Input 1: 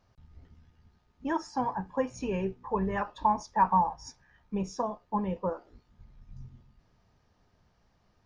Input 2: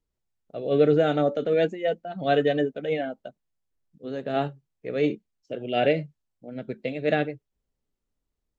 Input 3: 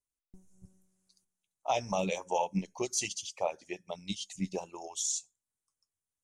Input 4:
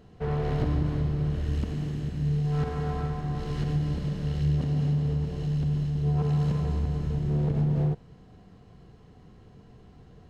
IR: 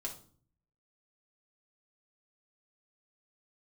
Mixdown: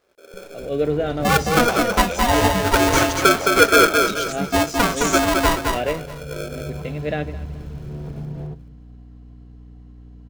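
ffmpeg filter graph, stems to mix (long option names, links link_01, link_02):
-filter_complex "[0:a]aeval=exprs='val(0)*sgn(sin(2*PI*480*n/s))':channel_layout=same,volume=0.5dB,asplit=2[link_01][link_02];[link_02]volume=-4dB[link_03];[1:a]volume=-14.5dB,asplit=2[link_04][link_05];[link_05]volume=-17.5dB[link_06];[2:a]alimiter=level_in=3dB:limit=-24dB:level=0:latency=1,volume=-3dB,volume=-2.5dB,asplit=2[link_07][link_08];[3:a]aeval=exprs='val(0)+0.0158*(sin(2*PI*60*n/s)+sin(2*PI*2*60*n/s)/2+sin(2*PI*3*60*n/s)/3+sin(2*PI*4*60*n/s)/4+sin(2*PI*5*60*n/s)/5)':channel_layout=same,adelay=600,volume=-18.5dB,asplit=2[link_09][link_10];[link_10]volume=-10dB[link_11];[link_08]apad=whole_len=480420[link_12];[link_09][link_12]sidechaincompress=threshold=-51dB:ratio=8:attack=16:release=1330[link_13];[4:a]atrim=start_sample=2205[link_14];[link_11][link_14]afir=irnorm=-1:irlink=0[link_15];[link_03][link_06]amix=inputs=2:normalize=0,aecho=0:1:215|430|645|860|1075:1|0.34|0.116|0.0393|0.0134[link_16];[link_01][link_04][link_07][link_13][link_15][link_16]amix=inputs=6:normalize=0,dynaudnorm=framelen=170:gausssize=3:maxgain=12.5dB"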